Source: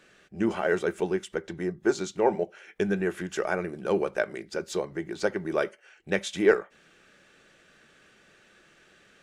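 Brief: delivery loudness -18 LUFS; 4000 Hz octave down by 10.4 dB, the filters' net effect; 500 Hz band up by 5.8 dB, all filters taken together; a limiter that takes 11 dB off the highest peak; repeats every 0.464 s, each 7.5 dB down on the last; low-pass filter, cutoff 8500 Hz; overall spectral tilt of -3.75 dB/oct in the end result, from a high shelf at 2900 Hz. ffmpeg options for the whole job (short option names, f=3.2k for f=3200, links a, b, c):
-af "lowpass=8.5k,equalizer=f=500:t=o:g=7.5,highshelf=f=2.9k:g=-8,equalizer=f=4k:t=o:g=-7,alimiter=limit=-13.5dB:level=0:latency=1,aecho=1:1:464|928|1392|1856|2320:0.422|0.177|0.0744|0.0312|0.0131,volume=8dB"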